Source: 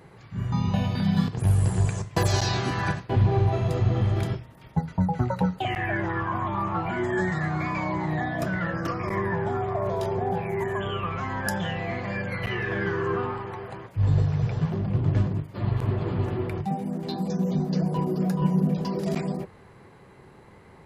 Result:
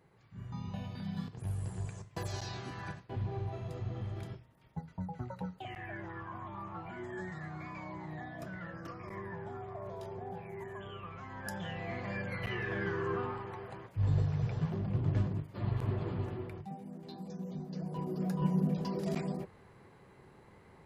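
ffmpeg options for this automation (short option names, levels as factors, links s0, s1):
-af "volume=1.06,afade=t=in:st=11.29:d=0.78:silence=0.398107,afade=t=out:st=15.98:d=0.67:silence=0.398107,afade=t=in:st=17.74:d=0.73:silence=0.375837"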